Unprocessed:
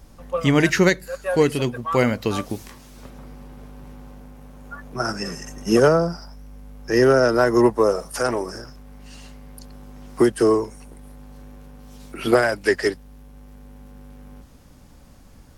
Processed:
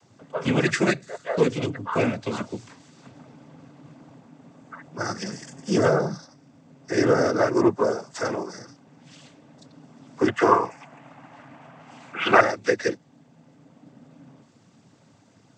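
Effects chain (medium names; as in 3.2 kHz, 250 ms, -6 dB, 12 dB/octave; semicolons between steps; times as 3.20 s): noise-vocoded speech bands 16; 10.28–12.41 s: high-order bell 1.4 kHz +13 dB 2.4 oct; trim -4 dB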